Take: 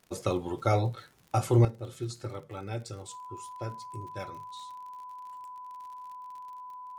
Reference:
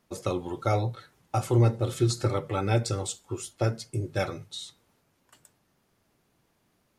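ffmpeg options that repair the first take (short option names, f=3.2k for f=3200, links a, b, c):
-af "adeclick=t=4,bandreject=f=1k:w=30,asetnsamples=n=441:p=0,asendcmd='1.65 volume volume 11.5dB',volume=0dB"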